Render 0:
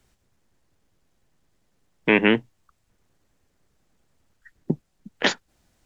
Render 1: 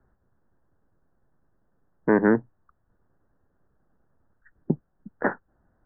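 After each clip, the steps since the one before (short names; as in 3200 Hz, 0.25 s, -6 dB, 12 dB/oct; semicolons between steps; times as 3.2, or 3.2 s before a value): steep low-pass 1700 Hz 72 dB/oct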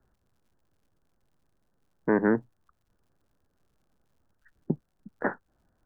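crackle 110/s -59 dBFS; gain -4 dB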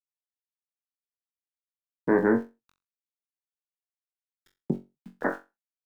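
sample gate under -50.5 dBFS; on a send: flutter echo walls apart 3.7 m, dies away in 0.24 s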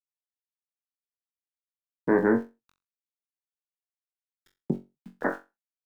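nothing audible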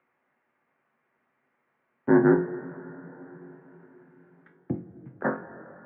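upward compressor, threshold -40 dBFS; two-slope reverb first 0.21 s, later 4.9 s, from -20 dB, DRR 4 dB; mistuned SSB -57 Hz 200–2100 Hz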